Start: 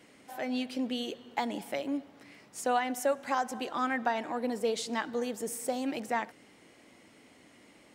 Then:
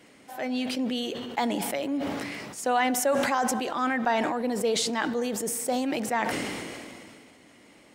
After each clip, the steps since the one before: sustainer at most 25 dB/s; gain +3 dB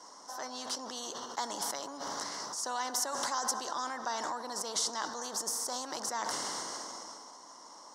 double band-pass 2400 Hz, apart 2.5 oct; spectral compressor 2:1; gain +5 dB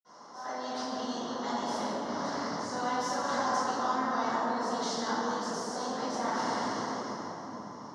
air absorption 90 m; reverb RT60 3.6 s, pre-delay 47 ms; gain +2 dB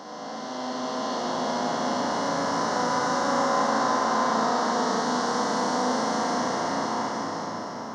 time blur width 1.34 s; flutter echo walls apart 6.2 m, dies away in 0.46 s; gain +7.5 dB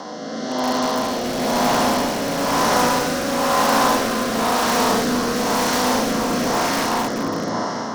in parallel at -5 dB: wrapped overs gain 22.5 dB; on the sum: rotary speaker horn 1 Hz; gain +7.5 dB

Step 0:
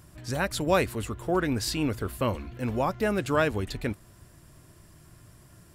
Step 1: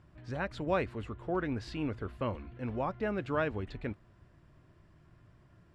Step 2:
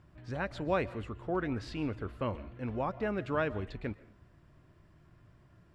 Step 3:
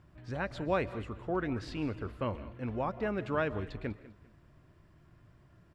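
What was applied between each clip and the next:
LPF 2700 Hz 12 dB/oct; gain -7 dB
reverb RT60 0.45 s, pre-delay 95 ms, DRR 18 dB
feedback echo 0.198 s, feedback 29%, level -18 dB

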